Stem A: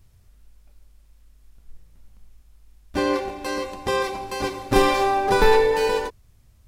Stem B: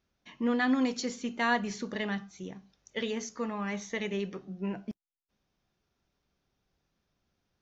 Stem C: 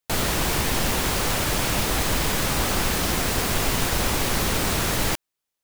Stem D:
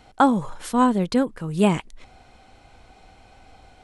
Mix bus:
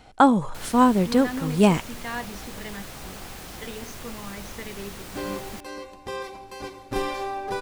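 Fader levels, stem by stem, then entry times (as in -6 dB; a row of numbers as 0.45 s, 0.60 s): -10.0 dB, -5.0 dB, -16.5 dB, +1.0 dB; 2.20 s, 0.65 s, 0.45 s, 0.00 s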